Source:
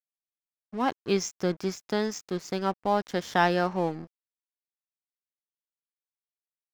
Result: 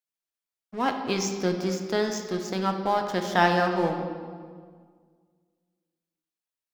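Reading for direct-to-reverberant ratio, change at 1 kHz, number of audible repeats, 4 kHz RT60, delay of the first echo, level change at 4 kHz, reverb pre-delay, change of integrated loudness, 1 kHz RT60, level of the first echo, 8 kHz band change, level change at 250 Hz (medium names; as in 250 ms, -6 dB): 4.0 dB, +2.5 dB, no echo, 1.3 s, no echo, +3.0 dB, 3 ms, +2.0 dB, 1.7 s, no echo, +2.5 dB, +2.0 dB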